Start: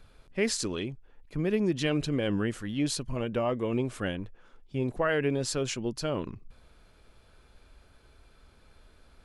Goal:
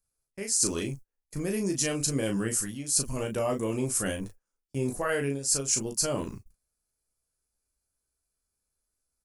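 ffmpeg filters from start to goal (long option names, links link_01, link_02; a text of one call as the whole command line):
ffmpeg -i in.wav -af "aexciter=amount=14:drive=5.1:freq=5300,agate=range=-32dB:threshold=-41dB:ratio=16:detection=peak,areverse,acompressor=threshold=-25dB:ratio=10,areverse,aecho=1:1:15|36:0.398|0.531" out.wav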